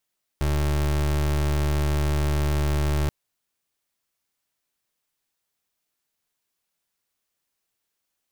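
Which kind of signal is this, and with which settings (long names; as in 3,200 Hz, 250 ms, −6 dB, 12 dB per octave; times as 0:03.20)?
pulse wave 73.7 Hz, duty 30% −22.5 dBFS 2.68 s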